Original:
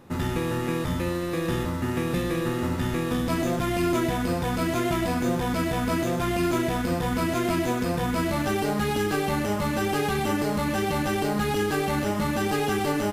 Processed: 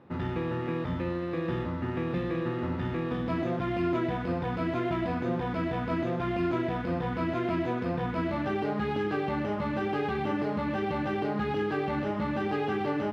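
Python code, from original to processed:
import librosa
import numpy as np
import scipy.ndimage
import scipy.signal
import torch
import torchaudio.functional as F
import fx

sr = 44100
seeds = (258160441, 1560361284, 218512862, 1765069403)

y = scipy.signal.sosfilt(scipy.signal.butter(2, 75.0, 'highpass', fs=sr, output='sos'), x)
y = fx.air_absorb(y, sr, metres=330.0)
y = fx.hum_notches(y, sr, base_hz=50, count=5)
y = y * 10.0 ** (-3.0 / 20.0)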